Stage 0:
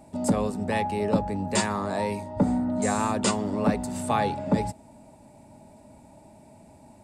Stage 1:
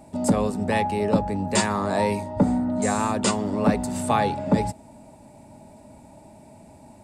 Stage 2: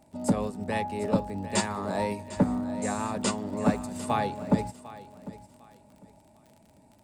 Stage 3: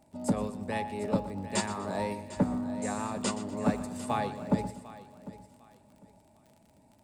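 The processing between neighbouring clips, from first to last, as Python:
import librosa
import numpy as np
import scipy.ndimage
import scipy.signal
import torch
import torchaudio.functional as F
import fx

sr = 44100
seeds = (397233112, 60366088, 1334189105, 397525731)

y1 = fx.rider(x, sr, range_db=10, speed_s=0.5)
y1 = y1 * 10.0 ** (3.0 / 20.0)
y2 = fx.dmg_crackle(y1, sr, seeds[0], per_s=44.0, level_db=-33.0)
y2 = fx.echo_feedback(y2, sr, ms=750, feedback_pct=27, wet_db=-11.5)
y2 = fx.upward_expand(y2, sr, threshold_db=-31.0, expansion=1.5)
y2 = y2 * 10.0 ** (-3.0 / 20.0)
y3 = fx.echo_feedback(y2, sr, ms=122, feedback_pct=39, wet_db=-14.5)
y3 = y3 * 10.0 ** (-3.5 / 20.0)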